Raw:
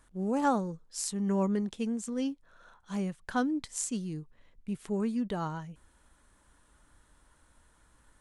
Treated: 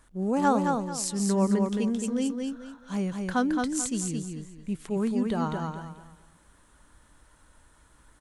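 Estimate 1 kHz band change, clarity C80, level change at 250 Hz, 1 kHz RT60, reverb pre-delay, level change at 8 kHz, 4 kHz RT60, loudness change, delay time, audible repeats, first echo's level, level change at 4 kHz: +5.0 dB, no reverb audible, +5.0 dB, no reverb audible, no reverb audible, +5.0 dB, no reverb audible, +4.5 dB, 219 ms, 3, −4.0 dB, +5.0 dB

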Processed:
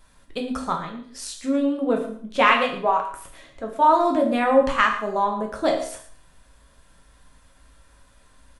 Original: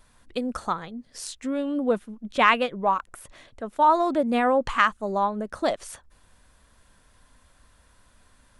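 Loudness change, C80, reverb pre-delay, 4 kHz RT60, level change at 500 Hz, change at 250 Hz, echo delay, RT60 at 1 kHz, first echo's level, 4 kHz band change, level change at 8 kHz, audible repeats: +3.0 dB, 10.0 dB, 7 ms, 0.50 s, +3.5 dB, +3.0 dB, 113 ms, 0.50 s, −13.0 dB, +3.0 dB, +2.5 dB, 1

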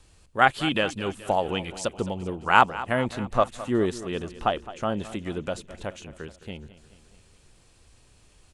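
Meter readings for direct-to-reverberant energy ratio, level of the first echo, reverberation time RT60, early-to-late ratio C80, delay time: no reverb audible, −16.0 dB, no reverb audible, no reverb audible, 213 ms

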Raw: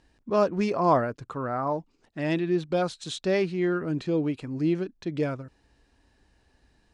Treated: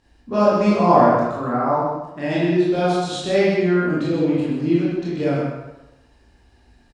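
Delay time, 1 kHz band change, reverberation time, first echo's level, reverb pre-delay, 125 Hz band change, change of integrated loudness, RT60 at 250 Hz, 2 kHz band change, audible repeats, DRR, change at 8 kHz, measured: 128 ms, +9.5 dB, 1.0 s, −4.5 dB, 18 ms, +7.5 dB, +8.0 dB, 0.90 s, +7.5 dB, 1, −8.5 dB, +6.0 dB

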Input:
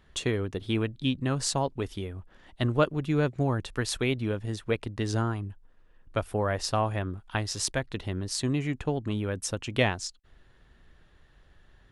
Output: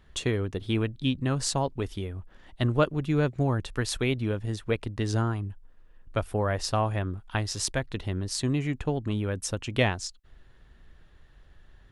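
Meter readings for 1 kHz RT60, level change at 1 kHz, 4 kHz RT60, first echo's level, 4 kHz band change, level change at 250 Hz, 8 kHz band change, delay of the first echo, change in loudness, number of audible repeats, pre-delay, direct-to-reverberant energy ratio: no reverb audible, 0.0 dB, no reverb audible, no echo audible, 0.0 dB, +0.5 dB, 0.0 dB, no echo audible, +0.5 dB, no echo audible, no reverb audible, no reverb audible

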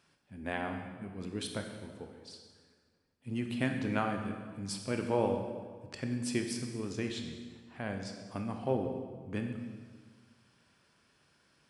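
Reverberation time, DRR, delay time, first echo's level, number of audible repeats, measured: 1.5 s, 4.0 dB, no echo audible, no echo audible, no echo audible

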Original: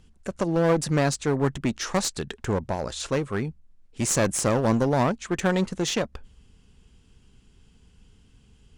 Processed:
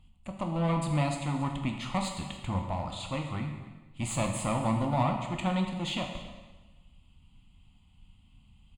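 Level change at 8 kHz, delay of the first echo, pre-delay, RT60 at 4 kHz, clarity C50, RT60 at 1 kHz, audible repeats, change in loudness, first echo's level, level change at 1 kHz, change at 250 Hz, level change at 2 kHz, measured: −12.0 dB, 283 ms, 8 ms, 1.1 s, 5.5 dB, 1.2 s, 1, −6.5 dB, −18.5 dB, −2.5 dB, −5.5 dB, −8.0 dB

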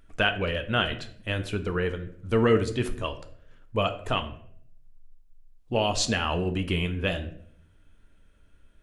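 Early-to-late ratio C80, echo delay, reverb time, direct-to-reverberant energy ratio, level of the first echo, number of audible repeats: 16.0 dB, no echo audible, 0.65 s, 7.0 dB, no echo audible, no echo audible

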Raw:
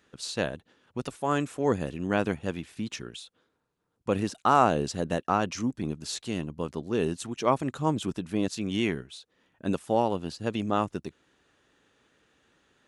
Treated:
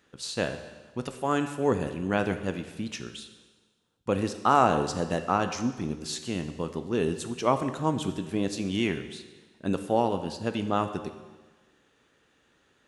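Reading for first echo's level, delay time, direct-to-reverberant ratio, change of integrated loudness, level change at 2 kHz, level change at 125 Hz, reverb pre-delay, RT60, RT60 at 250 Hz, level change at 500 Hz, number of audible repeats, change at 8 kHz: no echo audible, no echo audible, 8.0 dB, +0.5 dB, +1.0 dB, +0.5 dB, 13 ms, 1.3 s, 1.3 s, +0.5 dB, no echo audible, +0.5 dB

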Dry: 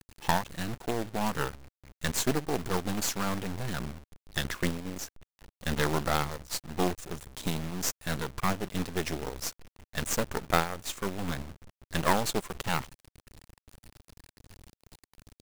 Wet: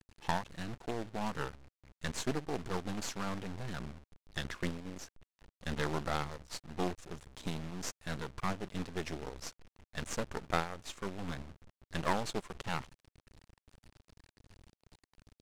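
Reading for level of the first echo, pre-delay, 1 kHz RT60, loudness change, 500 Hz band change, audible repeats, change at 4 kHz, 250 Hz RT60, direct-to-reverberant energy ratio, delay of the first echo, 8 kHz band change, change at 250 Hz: no echo audible, no reverb audible, no reverb audible, −7.5 dB, −6.5 dB, no echo audible, −8.0 dB, no reverb audible, no reverb audible, no echo audible, −11.0 dB, −6.5 dB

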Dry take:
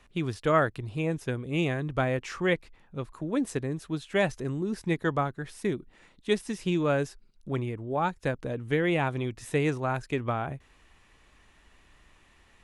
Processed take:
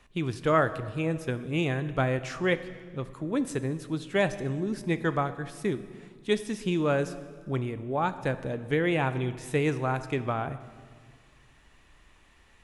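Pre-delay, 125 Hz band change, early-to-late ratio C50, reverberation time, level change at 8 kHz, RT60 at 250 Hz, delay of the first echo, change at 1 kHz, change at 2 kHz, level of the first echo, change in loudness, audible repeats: 11 ms, +0.5 dB, 13.5 dB, 1.8 s, 0.0 dB, 2.3 s, no echo audible, +0.5 dB, 0.0 dB, no echo audible, +0.5 dB, no echo audible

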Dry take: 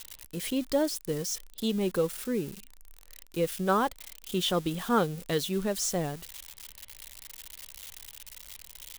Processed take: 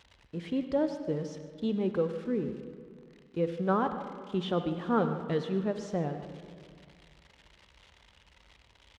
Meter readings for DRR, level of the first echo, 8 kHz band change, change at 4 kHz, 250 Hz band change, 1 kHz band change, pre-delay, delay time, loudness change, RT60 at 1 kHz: 7.5 dB, −17.0 dB, below −20 dB, −11.5 dB, 0.0 dB, −2.5 dB, 35 ms, 101 ms, −2.0 dB, 2.1 s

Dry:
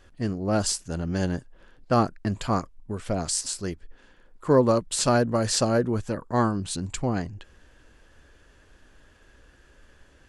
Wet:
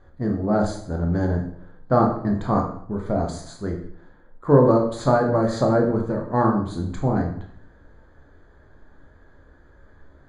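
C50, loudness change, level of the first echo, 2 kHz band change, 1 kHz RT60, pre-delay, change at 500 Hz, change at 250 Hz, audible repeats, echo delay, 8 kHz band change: 6.5 dB, +3.5 dB, no echo audible, +0.5 dB, 0.60 s, 14 ms, +4.5 dB, +4.5 dB, no echo audible, no echo audible, −15.5 dB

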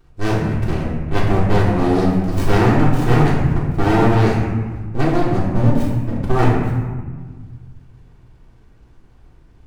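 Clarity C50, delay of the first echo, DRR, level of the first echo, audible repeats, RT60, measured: 1.0 dB, no echo audible, −7.0 dB, no echo audible, no echo audible, 1.5 s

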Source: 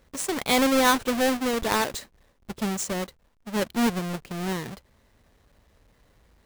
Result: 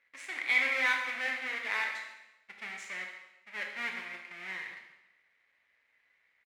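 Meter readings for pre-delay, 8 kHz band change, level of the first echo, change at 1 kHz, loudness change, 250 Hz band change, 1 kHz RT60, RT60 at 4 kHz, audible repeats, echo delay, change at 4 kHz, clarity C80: 7 ms, −20.5 dB, −14.0 dB, −14.0 dB, −7.5 dB, −28.0 dB, 0.90 s, 0.85 s, 1, 140 ms, −10.5 dB, 7.0 dB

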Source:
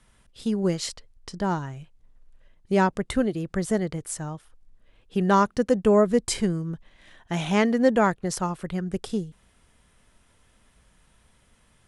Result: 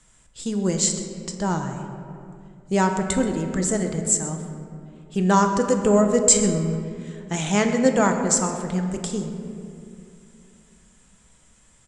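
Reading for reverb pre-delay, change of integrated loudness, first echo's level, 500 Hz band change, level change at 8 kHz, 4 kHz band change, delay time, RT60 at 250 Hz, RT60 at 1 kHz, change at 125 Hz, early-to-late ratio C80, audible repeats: 6 ms, +3.0 dB, −17.0 dB, +1.5 dB, +14.5 dB, +3.5 dB, 131 ms, 3.4 s, 2.3 s, +3.5 dB, 7.0 dB, 1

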